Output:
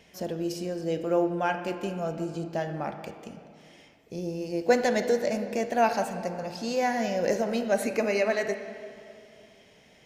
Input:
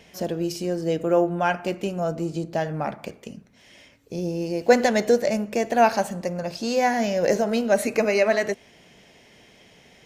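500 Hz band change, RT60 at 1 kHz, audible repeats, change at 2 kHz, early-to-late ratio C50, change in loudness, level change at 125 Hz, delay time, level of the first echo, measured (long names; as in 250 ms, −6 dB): −5.0 dB, 2.4 s, no echo audible, −5.0 dB, 9.0 dB, −5.0 dB, −5.5 dB, no echo audible, no echo audible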